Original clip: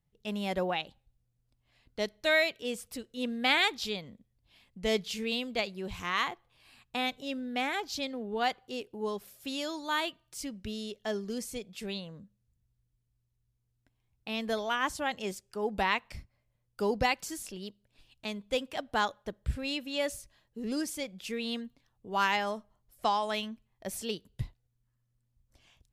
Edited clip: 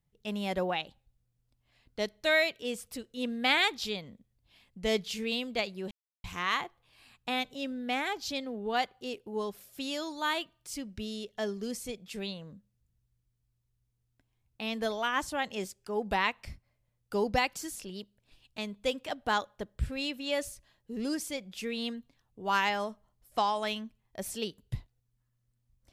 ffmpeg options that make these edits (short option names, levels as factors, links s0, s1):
-filter_complex "[0:a]asplit=2[s0][s1];[s0]atrim=end=5.91,asetpts=PTS-STARTPTS,afade=t=out:st=5.906:d=0.004:c=hsin,apad=pad_dur=0.33[s2];[s1]atrim=start=5.91,asetpts=PTS-STARTPTS,afade=t=in:d=0.004:c=hsin[s3];[s2][s3]concat=n=2:v=0:a=1"